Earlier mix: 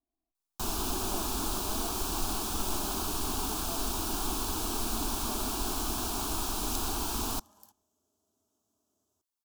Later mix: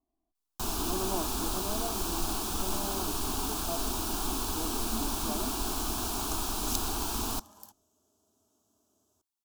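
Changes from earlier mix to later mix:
speech +7.0 dB; second sound +7.0 dB; reverb: off

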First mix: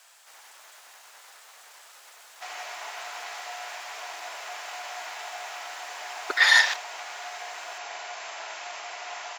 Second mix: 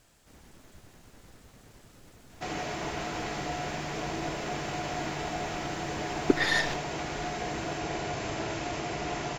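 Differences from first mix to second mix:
speech -10.0 dB; master: remove HPF 760 Hz 24 dB/oct

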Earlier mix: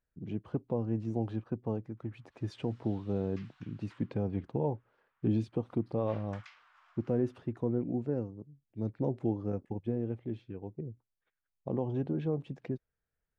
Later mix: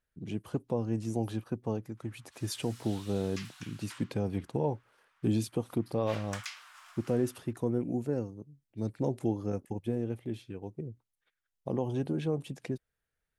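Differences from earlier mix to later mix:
background +4.5 dB; master: remove tape spacing loss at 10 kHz 31 dB

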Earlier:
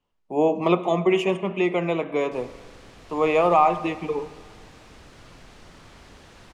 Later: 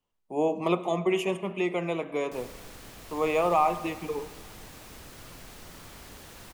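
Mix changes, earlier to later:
speech -6.0 dB; master: remove air absorption 80 m

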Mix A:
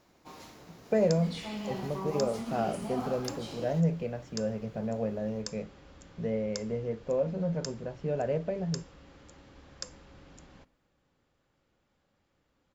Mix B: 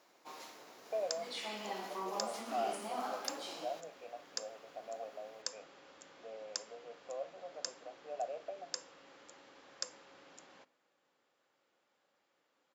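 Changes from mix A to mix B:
speech: add vowel filter a; master: add HPF 450 Hz 12 dB/oct

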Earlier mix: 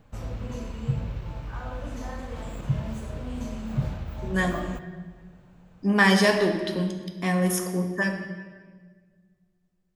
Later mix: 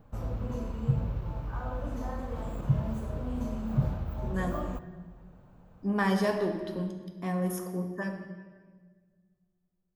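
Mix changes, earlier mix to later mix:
speech -6.5 dB; master: add band shelf 4100 Hz -8.5 dB 2.8 oct

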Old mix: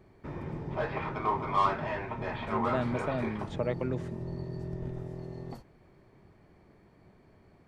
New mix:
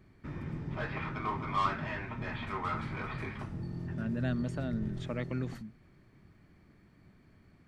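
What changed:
speech: entry +1.50 s; master: add band shelf 610 Hz -8.5 dB

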